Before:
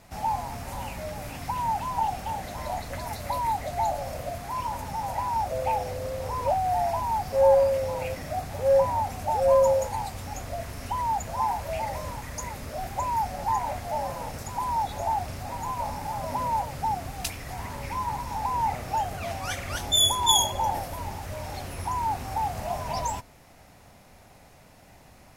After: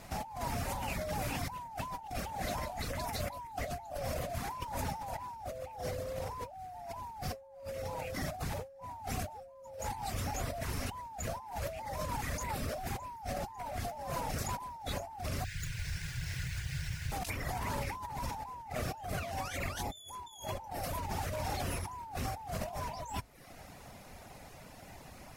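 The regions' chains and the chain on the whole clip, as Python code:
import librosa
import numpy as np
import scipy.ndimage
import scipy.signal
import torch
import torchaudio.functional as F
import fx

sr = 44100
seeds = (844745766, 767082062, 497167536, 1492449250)

y = fx.chain(x, sr, fx.brickwall_bandstop(low_hz=170.0, high_hz=1400.0),
    fx.running_max(window=3), at=(15.44, 17.12))
y = fx.dereverb_blind(y, sr, rt60_s=0.62)
y = fx.hum_notches(y, sr, base_hz=50, count=2)
y = fx.over_compress(y, sr, threshold_db=-38.0, ratio=-1.0)
y = y * librosa.db_to_amplitude(-3.0)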